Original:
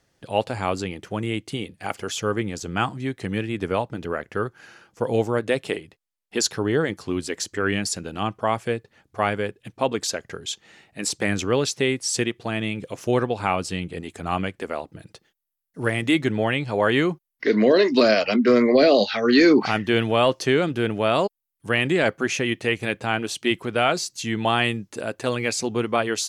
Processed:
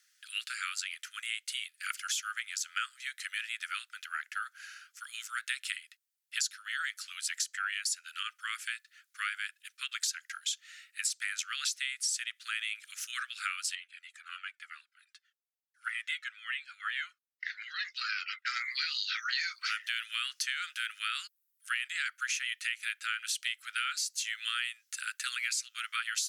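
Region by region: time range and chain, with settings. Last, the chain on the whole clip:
13.75–18.46 s: RIAA curve playback + Shepard-style flanger falling 1.1 Hz
whole clip: steep high-pass 1.3 kHz 96 dB/octave; treble shelf 5.2 kHz +8.5 dB; compression 6:1, threshold -29 dBFS; trim -1.5 dB

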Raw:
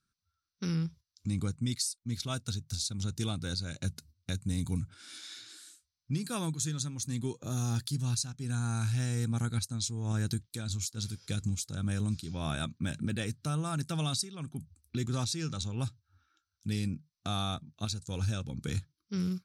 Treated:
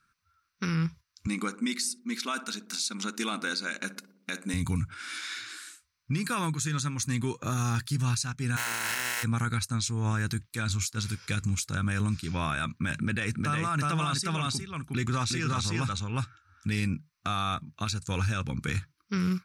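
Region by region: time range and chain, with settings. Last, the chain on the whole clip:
1.27–4.54 s: brick-wall FIR high-pass 190 Hz + filtered feedback delay 61 ms, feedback 67%, low-pass 850 Hz, level -14 dB
8.56–9.22 s: spectral contrast reduction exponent 0.22 + hum notches 60/120/180/240/300/360/420/480 Hz + comb of notches 1.2 kHz
12.97–16.73 s: low-pass 11 kHz + delay 360 ms -3.5 dB
whole clip: high-order bell 1.6 kHz +10.5 dB; peak limiter -26.5 dBFS; trim +6 dB

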